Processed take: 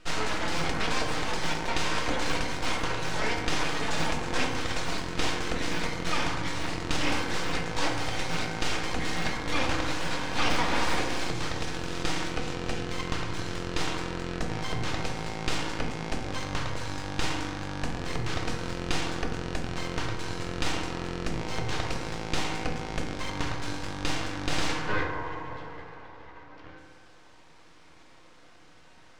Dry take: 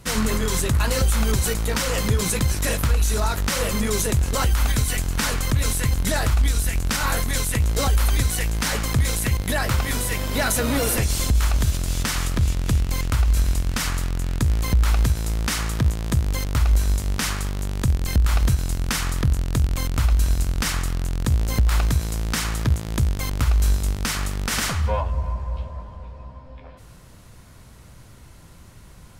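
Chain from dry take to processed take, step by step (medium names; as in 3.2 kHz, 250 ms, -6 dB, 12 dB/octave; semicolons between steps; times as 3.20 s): high-pass 450 Hz 6 dB/octave; full-wave rectifier; distance through air 120 m; reverberation RT60 1.7 s, pre-delay 3 ms, DRR 0.5 dB; trim +1.5 dB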